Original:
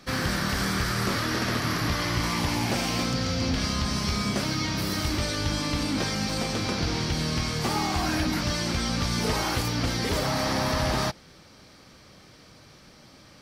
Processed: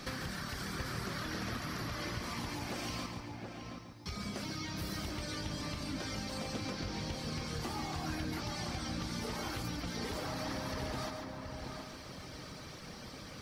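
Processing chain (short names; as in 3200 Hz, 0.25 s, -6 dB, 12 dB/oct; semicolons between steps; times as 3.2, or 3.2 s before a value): reverb removal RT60 1 s; compressor 5:1, threshold -45 dBFS, peak gain reduction 19.5 dB; 3.06–4.06 resonator 110 Hz, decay 1.3 s, harmonics odd, mix 100%; darkening echo 0.724 s, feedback 29%, low-pass 1800 Hz, level -4 dB; lo-fi delay 0.141 s, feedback 35%, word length 12-bit, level -7 dB; gain +4.5 dB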